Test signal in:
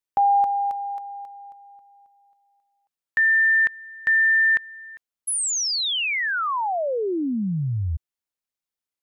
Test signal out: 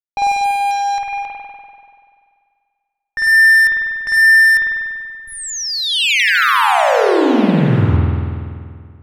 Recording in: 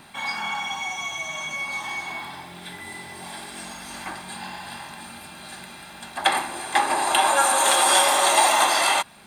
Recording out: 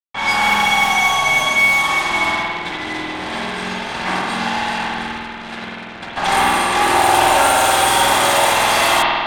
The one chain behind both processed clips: fuzz box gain 36 dB, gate -37 dBFS; spring tank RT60 2.1 s, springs 48 ms, chirp 55 ms, DRR -5 dB; level-controlled noise filter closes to 2.3 kHz, open at -6 dBFS; trim -4.5 dB

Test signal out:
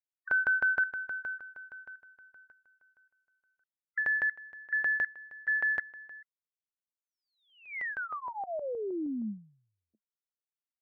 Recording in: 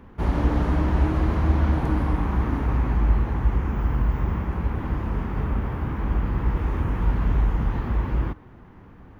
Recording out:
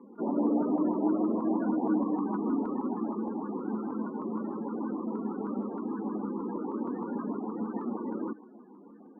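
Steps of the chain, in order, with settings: loudest bins only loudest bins 32; Chebyshev band-pass 210–2100 Hz, order 5; LFO notch saw up 6.4 Hz 630–1700 Hz; trim +2 dB

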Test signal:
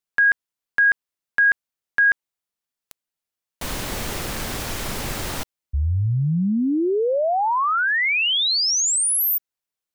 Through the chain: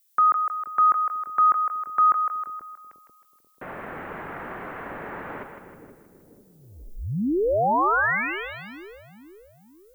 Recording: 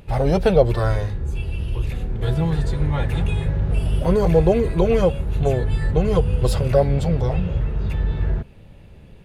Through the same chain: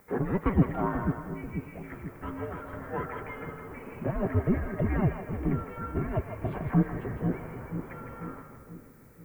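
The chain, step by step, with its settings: mistuned SSB -390 Hz 600–2300 Hz; two-band feedback delay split 460 Hz, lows 487 ms, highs 158 ms, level -7 dB; added noise violet -63 dBFS; trim -1.5 dB

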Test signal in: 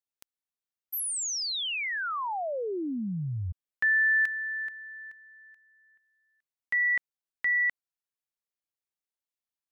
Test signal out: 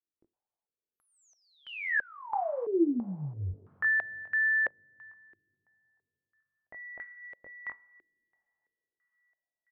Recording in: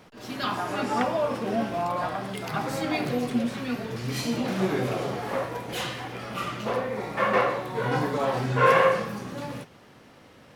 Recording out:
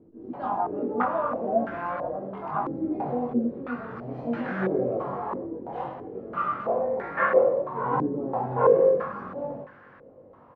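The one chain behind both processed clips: doubling 21 ms -4 dB; two-slope reverb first 0.34 s, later 3.9 s, from -17 dB, DRR 14 dB; step-sequenced low-pass 3 Hz 350–1600 Hz; trim -6 dB

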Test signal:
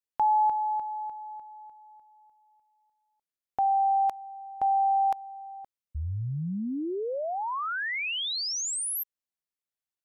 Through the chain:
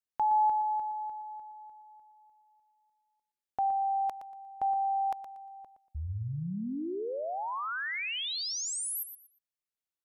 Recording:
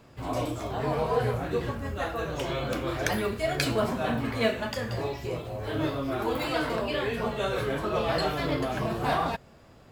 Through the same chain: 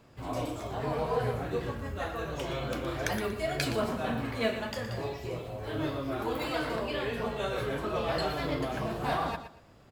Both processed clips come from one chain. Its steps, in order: feedback delay 118 ms, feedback 24%, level -10.5 dB; trim -4 dB

